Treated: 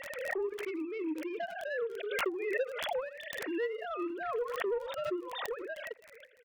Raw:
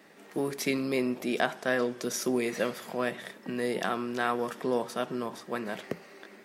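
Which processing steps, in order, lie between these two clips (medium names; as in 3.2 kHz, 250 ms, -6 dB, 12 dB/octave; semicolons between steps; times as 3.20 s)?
formants replaced by sine waves; peaking EQ 260 Hz +7 dB 0.54 oct, from 4.10 s +13 dB; harmonic-percussive split percussive -5 dB; treble shelf 2.5 kHz +9.5 dB; transient shaper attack +8 dB, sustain -11 dB; compression 2.5:1, threshold -30 dBFS, peak gain reduction 11 dB; crackle 31 per s -46 dBFS; saturation -25 dBFS, distortion -16 dB; tremolo triangle 2.8 Hz, depth 85%; speakerphone echo 80 ms, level -19 dB; swell ahead of each attack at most 33 dB/s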